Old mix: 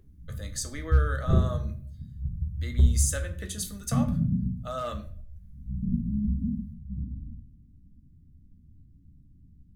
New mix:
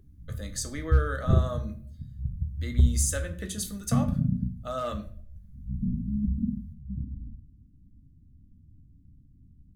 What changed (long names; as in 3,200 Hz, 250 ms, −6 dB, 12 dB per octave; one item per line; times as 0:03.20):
background: send −10.5 dB
master: add low-shelf EQ 400 Hz +5.5 dB